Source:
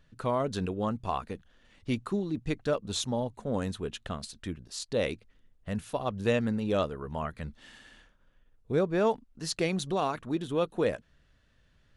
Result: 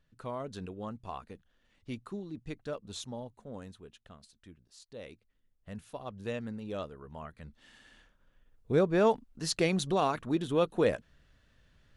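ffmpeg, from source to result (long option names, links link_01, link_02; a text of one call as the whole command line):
ffmpeg -i in.wav -af "volume=8.5dB,afade=type=out:start_time=3.02:duration=0.9:silence=0.421697,afade=type=in:start_time=5.04:duration=0.66:silence=0.446684,afade=type=in:start_time=7.42:duration=1.35:silence=0.281838" out.wav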